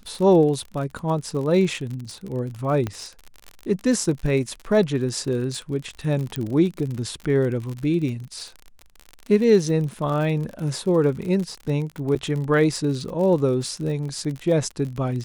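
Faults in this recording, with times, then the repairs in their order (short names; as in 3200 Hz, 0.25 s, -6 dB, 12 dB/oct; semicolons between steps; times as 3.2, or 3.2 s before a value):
crackle 50/s -29 dBFS
2.87 pop -14 dBFS
6.36 pop -12 dBFS
12.15–12.16 gap 7.9 ms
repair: de-click; interpolate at 12.15, 7.9 ms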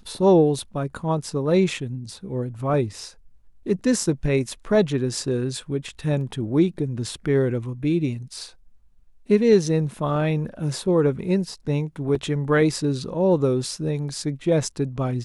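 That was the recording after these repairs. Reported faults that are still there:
6.36 pop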